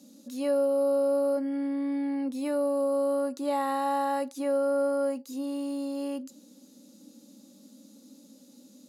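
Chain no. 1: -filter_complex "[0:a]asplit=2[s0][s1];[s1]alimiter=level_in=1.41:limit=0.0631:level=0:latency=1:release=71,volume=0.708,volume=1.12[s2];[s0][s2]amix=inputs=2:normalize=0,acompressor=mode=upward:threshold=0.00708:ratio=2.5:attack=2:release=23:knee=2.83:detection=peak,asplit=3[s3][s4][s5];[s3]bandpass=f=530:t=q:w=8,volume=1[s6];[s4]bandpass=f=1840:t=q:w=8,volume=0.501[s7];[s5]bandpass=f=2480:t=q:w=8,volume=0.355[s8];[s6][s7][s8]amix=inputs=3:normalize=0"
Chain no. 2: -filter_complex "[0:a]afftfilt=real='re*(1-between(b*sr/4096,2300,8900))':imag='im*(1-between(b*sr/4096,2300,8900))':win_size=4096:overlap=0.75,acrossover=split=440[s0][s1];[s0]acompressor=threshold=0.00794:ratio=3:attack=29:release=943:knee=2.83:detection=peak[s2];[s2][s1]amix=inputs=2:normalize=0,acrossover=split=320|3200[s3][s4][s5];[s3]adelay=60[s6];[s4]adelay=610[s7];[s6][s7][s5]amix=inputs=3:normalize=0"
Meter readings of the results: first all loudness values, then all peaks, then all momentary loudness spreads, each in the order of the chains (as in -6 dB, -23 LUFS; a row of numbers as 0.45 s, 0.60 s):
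-29.0 LUFS, -32.0 LUFS; -19.5 dBFS, -21.0 dBFS; 16 LU, 15 LU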